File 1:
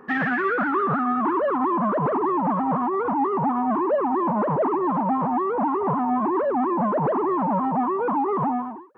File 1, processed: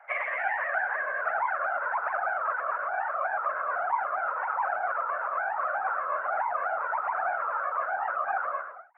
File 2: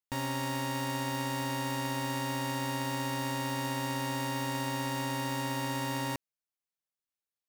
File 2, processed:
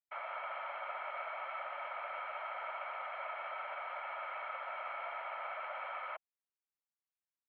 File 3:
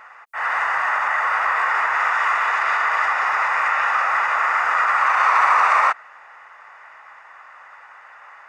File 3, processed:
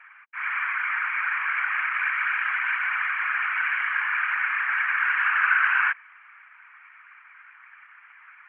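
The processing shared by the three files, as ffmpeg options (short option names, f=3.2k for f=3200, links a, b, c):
-af "highpass=f=300:t=q:w=0.5412,highpass=f=300:t=q:w=1.307,lowpass=f=2.3k:t=q:w=0.5176,lowpass=f=2.3k:t=q:w=0.7071,lowpass=f=2.3k:t=q:w=1.932,afreqshift=370,afftfilt=real='hypot(re,im)*cos(2*PI*random(0))':imag='hypot(re,im)*sin(2*PI*random(1))':win_size=512:overlap=0.75"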